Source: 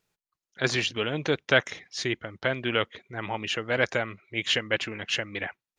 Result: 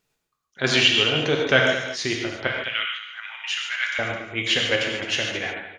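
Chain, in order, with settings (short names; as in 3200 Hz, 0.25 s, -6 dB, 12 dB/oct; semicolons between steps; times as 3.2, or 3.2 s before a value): 0.67–1.07 bell 3100 Hz +9 dB 0.79 oct; 2.47–3.99 HPF 1500 Hz 24 dB/oct; echo 0.213 s -11.5 dB; non-linear reverb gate 0.18 s flat, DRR 0 dB; gain +2 dB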